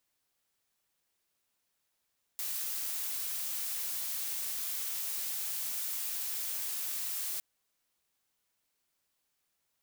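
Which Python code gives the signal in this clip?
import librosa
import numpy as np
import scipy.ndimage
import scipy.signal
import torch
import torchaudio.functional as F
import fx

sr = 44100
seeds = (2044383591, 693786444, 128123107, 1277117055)

y = fx.noise_colour(sr, seeds[0], length_s=5.01, colour='blue', level_db=-36.0)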